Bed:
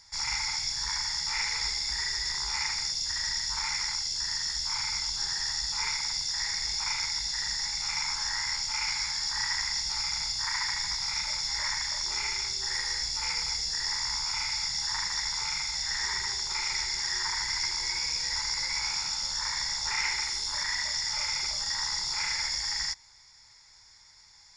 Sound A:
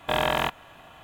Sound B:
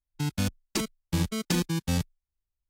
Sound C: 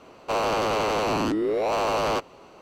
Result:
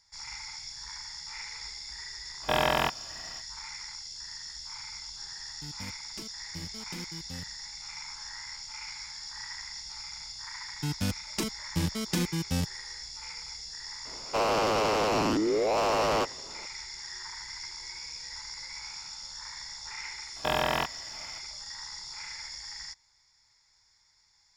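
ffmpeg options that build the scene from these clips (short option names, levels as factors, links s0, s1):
-filter_complex "[1:a]asplit=2[s0][s1];[2:a]asplit=2[s2][s3];[0:a]volume=0.299[s4];[s0]atrim=end=1.03,asetpts=PTS-STARTPTS,volume=0.841,afade=t=in:d=0.05,afade=t=out:st=0.98:d=0.05,adelay=2400[s5];[s2]atrim=end=2.69,asetpts=PTS-STARTPTS,volume=0.168,afade=t=in:d=0.004:c=hsin,afade=t=out:st=2.686:d=0.004:c=hsin,adelay=5420[s6];[s3]atrim=end=2.69,asetpts=PTS-STARTPTS,volume=0.75,afade=t=in:d=0.004:c=hsin,afade=t=out:st=2.686:d=0.004:c=hsin,adelay=10630[s7];[3:a]atrim=end=2.61,asetpts=PTS-STARTPTS,volume=0.794,afade=t=in:d=0.004:c=hsin,afade=t=out:st=2.606:d=0.004:c=hsin,adelay=14050[s8];[s1]atrim=end=1.03,asetpts=PTS-STARTPTS,volume=0.668,afade=t=in:d=0.004:c=hsin,afade=t=out:st=1.026:d=0.004:c=hsin,adelay=897876S[s9];[s4][s5][s6][s7][s8][s9]amix=inputs=6:normalize=0"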